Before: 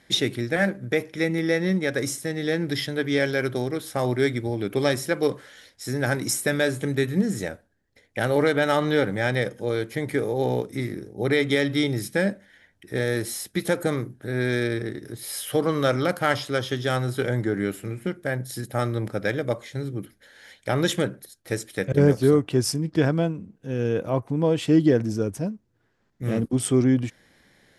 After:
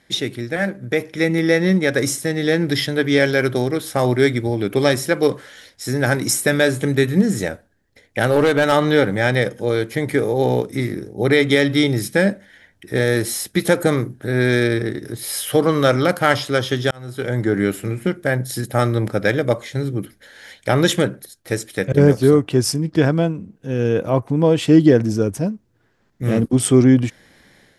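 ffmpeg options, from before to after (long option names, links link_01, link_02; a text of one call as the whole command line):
ffmpeg -i in.wav -filter_complex "[0:a]asettb=1/sr,asplit=3[link_01][link_02][link_03];[link_01]atrim=end=8.294[link_04];[link_02]atrim=start=8.29:end=8.72,asetpts=PTS-STARTPTS,afade=type=in:duration=0.004:curve=qsin,afade=type=out:start_time=0.426:duration=0.004:curve=qsin,asoftclip=type=hard:threshold=-15.5dB[link_05];[link_03]atrim=start=8.716[link_06];[link_04][link_05]acrossfade=duration=0.004:curve1=hsin:curve2=qsin[link_07];[link_07][link_06]acrossfade=duration=0.004:curve1=qsin:curve2=hsin,asplit=2[link_08][link_09];[link_08]atrim=end=16.91,asetpts=PTS-STARTPTS,afade=type=out:start_time=16.906:duration=0.004:curve=hsin[link_10];[link_09]atrim=start=16.91,asetpts=PTS-STARTPTS,afade=type=in:duration=0.63[link_11];[link_10][link_11]concat=n=2:v=0:a=1,dynaudnorm=framelen=690:gausssize=3:maxgain=11.5dB" out.wav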